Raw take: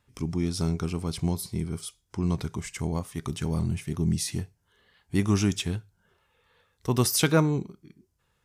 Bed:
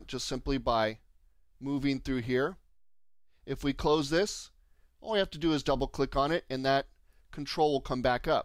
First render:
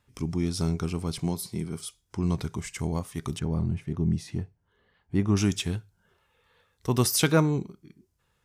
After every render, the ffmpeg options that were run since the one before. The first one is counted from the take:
-filter_complex "[0:a]asettb=1/sr,asplit=3[a][b][c];[a]atrim=end=1.184[d];[b]atrim=start=1.18:end=1.8,asetpts=PTS-STARTPTS,afade=t=in:d=0.004:c=qsin,afade=t=out:st=0.616:d=0.004:c=qsin,highpass=130[e];[c]atrim=start=1.796[f];[d][e]acrossfade=d=0.004:c1=hsin:c2=qsin[g];[g][f]acrossfade=d=0.004:c1=qsin:c2=hsin,asettb=1/sr,asplit=3[h][i][j];[h]atrim=end=3.394[k];[i]atrim=start=3.39:end=5.37,asetpts=PTS-STARTPTS,afade=t=in:d=0.004:c=qsin,afade=t=out:st=1.976:d=0.004:c=qsin,lowpass=f=1.2k:p=1[l];[j]atrim=start=5.366[m];[k][l]acrossfade=d=0.004:c1=hsin:c2=qsin[n];[n][m]acrossfade=d=0.004:c1=qsin:c2=hsin"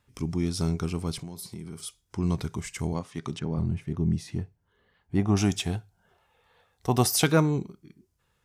-filter_complex "[0:a]asettb=1/sr,asplit=3[a][b][c];[a]atrim=end=1.224[d];[b]atrim=start=1.22:end=1.83,asetpts=PTS-STARTPTS,afade=t=in:d=0.004:c=qsin,afade=t=out:st=0.606:d=0.004:c=qsin,acompressor=threshold=-34dB:ratio=8:attack=3.2:release=140:knee=1:detection=peak[e];[c]atrim=start=1.826[f];[d][e]acrossfade=d=0.004:c1=hsin:c2=qsin[g];[g][f]acrossfade=d=0.004:c1=qsin:c2=hsin,asettb=1/sr,asplit=3[h][i][j];[h]atrim=end=2.934[k];[i]atrim=start=2.93:end=3.58,asetpts=PTS-STARTPTS,afade=t=in:d=0.004:c=qsin,afade=t=out:st=0.646:d=0.004:c=qsin,highpass=130,lowpass=6k[l];[j]atrim=start=3.576[m];[k][l]acrossfade=d=0.004:c1=hsin:c2=qsin[n];[n][m]acrossfade=d=0.004:c1=qsin:c2=hsin,asettb=1/sr,asplit=3[o][p][q];[o]atrim=end=5.174[r];[p]atrim=start=5.17:end=7.24,asetpts=PTS-STARTPTS,afade=t=in:d=0.004:c=qsin,afade=t=out:st=2.066:d=0.004:c=qsin,equalizer=f=740:t=o:w=0.38:g=13[s];[q]atrim=start=7.236[t];[r][s]acrossfade=d=0.004:c1=hsin:c2=qsin[u];[u][t]acrossfade=d=0.004:c1=qsin:c2=hsin"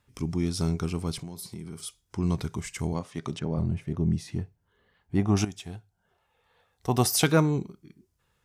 -filter_complex "[0:a]asettb=1/sr,asplit=3[a][b][c];[a]atrim=end=3.014[d];[b]atrim=start=3.01:end=4.11,asetpts=PTS-STARTPTS,afade=t=in:d=0.004:c=qsin,afade=t=out:st=1.096:d=0.004:c=qsin,equalizer=f=580:t=o:w=0.53:g=6[e];[c]atrim=start=4.106[f];[d][e]acrossfade=d=0.004:c1=hsin:c2=qsin[g];[g][f]acrossfade=d=0.004:c1=qsin:c2=hsin,asplit=2[h][i];[h]atrim=end=5.45,asetpts=PTS-STARTPTS,afade=t=out:st=5.446:d=0.004:c=hsin:silence=0.199526[j];[i]atrim=start=5.45,asetpts=PTS-STARTPTS,afade=t=in:d=1.73:silence=0.199526[k];[j][k]concat=n=2:v=0:a=1"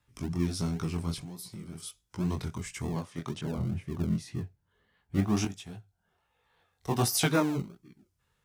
-filter_complex "[0:a]flanger=delay=16:depth=7.8:speed=1.4,acrossover=split=360|470|3600[a][b][c][d];[b]acrusher=samples=41:mix=1:aa=0.000001:lfo=1:lforange=24.6:lforate=2[e];[a][e][c][d]amix=inputs=4:normalize=0"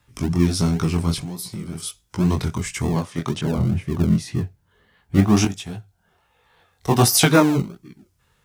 -af "volume=11.5dB,alimiter=limit=-2dB:level=0:latency=1"

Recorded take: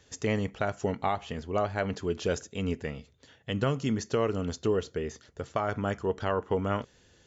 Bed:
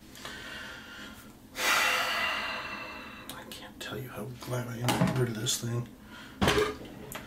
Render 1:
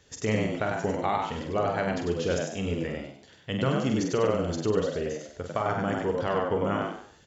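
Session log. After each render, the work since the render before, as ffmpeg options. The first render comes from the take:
-filter_complex "[0:a]asplit=2[a][b];[b]adelay=46,volume=-6dB[c];[a][c]amix=inputs=2:normalize=0,asplit=2[d][e];[e]asplit=4[f][g][h][i];[f]adelay=97,afreqshift=69,volume=-3.5dB[j];[g]adelay=194,afreqshift=138,volume=-13.7dB[k];[h]adelay=291,afreqshift=207,volume=-23.8dB[l];[i]adelay=388,afreqshift=276,volume=-34dB[m];[j][k][l][m]amix=inputs=4:normalize=0[n];[d][n]amix=inputs=2:normalize=0"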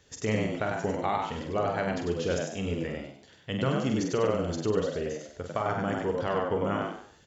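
-af "volume=-1.5dB"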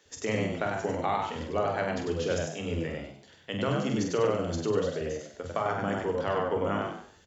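-filter_complex "[0:a]asplit=2[a][b];[b]adelay=24,volume=-13dB[c];[a][c]amix=inputs=2:normalize=0,acrossover=split=200[d][e];[d]adelay=50[f];[f][e]amix=inputs=2:normalize=0"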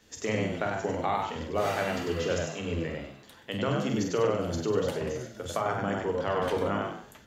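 -filter_complex "[1:a]volume=-13dB[a];[0:a][a]amix=inputs=2:normalize=0"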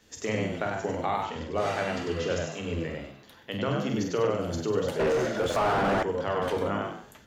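-filter_complex "[0:a]asettb=1/sr,asplit=3[a][b][c];[a]atrim=end=1.264[d];[b]atrim=start=1.26:end=2.52,asetpts=PTS-STARTPTS,afade=t=in:d=0.004:c=qsin,afade=t=out:st=1.256:d=0.004:c=qsin,lowpass=7.8k[e];[c]atrim=start=2.516[f];[d][e]acrossfade=d=0.004:c1=hsin:c2=qsin[g];[g][f]acrossfade=d=0.004:c1=qsin:c2=hsin,asettb=1/sr,asplit=3[h][i][j];[h]atrim=end=3.114[k];[i]atrim=start=3.11:end=4.3,asetpts=PTS-STARTPTS,afade=t=in:d=0.004:c=qsin,afade=t=out:st=1.186:d=0.004:c=qsin,equalizer=f=8.3k:w=4.2:g=-14[l];[j]atrim=start=4.296[m];[k][l]acrossfade=d=0.004:c1=hsin:c2=qsin[n];[n][m]acrossfade=d=0.004:c1=qsin:c2=hsin,asettb=1/sr,asplit=3[o][p][q];[o]atrim=end=4.994[r];[p]atrim=start=4.99:end=6.03,asetpts=PTS-STARTPTS,afade=t=in:d=0.004:c=qsin,afade=t=out:st=1.036:d=0.004:c=qsin,asplit=2[s][t];[t]highpass=f=720:p=1,volume=33dB,asoftclip=type=tanh:threshold=-16dB[u];[s][u]amix=inputs=2:normalize=0,lowpass=f=1k:p=1,volume=-6dB[v];[q]atrim=start=6.026[w];[r][v]acrossfade=d=0.004:c1=hsin:c2=qsin[x];[x][w]acrossfade=d=0.004:c1=qsin:c2=hsin"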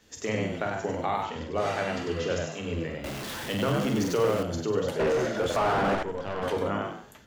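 -filter_complex "[0:a]asettb=1/sr,asplit=3[a][b][c];[a]atrim=end=3.044[d];[b]atrim=start=3.04:end=4.43,asetpts=PTS-STARTPTS,afade=t=in:d=0.004:c=qsin,afade=t=out:st=1.386:d=0.004:c=qsin,aeval=exprs='val(0)+0.5*0.0282*sgn(val(0))':c=same[e];[c]atrim=start=4.426[f];[d][e]acrossfade=d=0.004:c1=hsin:c2=qsin[g];[g][f]acrossfade=d=0.004:c1=qsin:c2=hsin,asettb=1/sr,asplit=3[h][i][j];[h]atrim=end=5.954[k];[i]atrim=start=5.95:end=6.43,asetpts=PTS-STARTPTS,afade=t=in:d=0.004:c=qsin,afade=t=out:st=0.476:d=0.004:c=qsin,aeval=exprs='(tanh(17.8*val(0)+0.7)-tanh(0.7))/17.8':c=same[l];[j]atrim=start=6.426[m];[k][l]acrossfade=d=0.004:c1=hsin:c2=qsin[n];[n][m]acrossfade=d=0.004:c1=qsin:c2=hsin"

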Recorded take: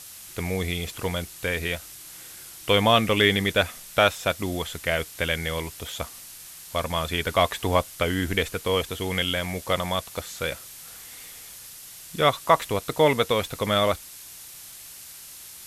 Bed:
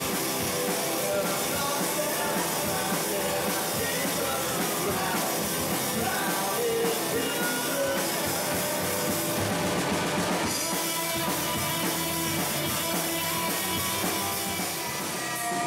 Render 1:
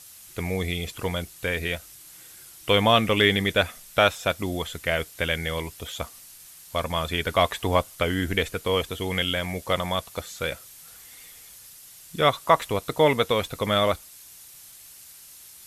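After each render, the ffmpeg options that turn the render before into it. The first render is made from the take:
-af "afftdn=nr=6:nf=-44"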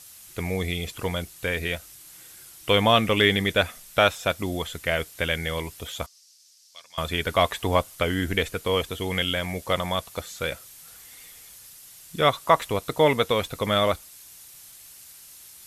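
-filter_complex "[0:a]asettb=1/sr,asplit=3[a][b][c];[a]atrim=end=6.064[d];[b]atrim=start=6.06:end=6.98,asetpts=PTS-STARTPTS,afade=t=in:d=0.004:c=qsin,afade=t=out:st=0.916:d=0.004:c=qsin,bandpass=f=5.3k:t=q:w=3.2[e];[c]atrim=start=6.976[f];[d][e]acrossfade=d=0.004:c1=hsin:c2=qsin[g];[g][f]acrossfade=d=0.004:c1=qsin:c2=hsin"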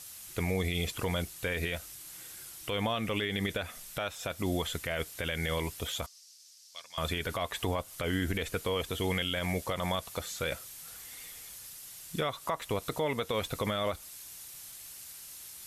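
-af "acompressor=threshold=-24dB:ratio=10,alimiter=limit=-21.5dB:level=0:latency=1:release=36"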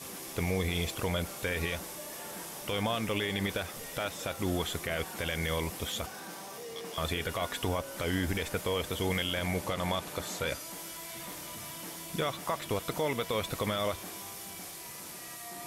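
-filter_complex "[1:a]volume=-16.5dB[a];[0:a][a]amix=inputs=2:normalize=0"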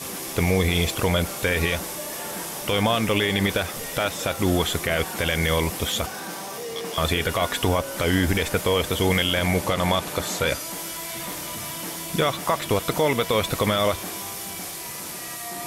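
-af "volume=10dB"

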